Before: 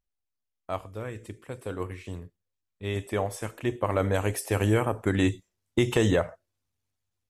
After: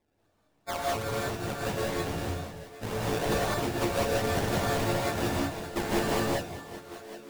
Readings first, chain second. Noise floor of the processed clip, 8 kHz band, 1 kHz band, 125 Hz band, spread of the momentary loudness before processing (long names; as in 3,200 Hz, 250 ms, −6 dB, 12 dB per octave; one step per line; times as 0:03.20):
−71 dBFS, +3.0 dB, +4.0 dB, −4.0 dB, 15 LU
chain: every partial snapped to a pitch grid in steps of 4 semitones
parametric band 12,000 Hz +5.5 dB 2.3 octaves
downward compressor, threshold −31 dBFS, peak gain reduction 17.5 dB
echo through a band-pass that steps 193 ms, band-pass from 2,900 Hz, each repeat −0.7 octaves, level −3.5 dB
sample-and-hold swept by an LFO 29×, swing 100% 2.6 Hz
reverb whose tail is shaped and stops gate 220 ms rising, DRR −4.5 dB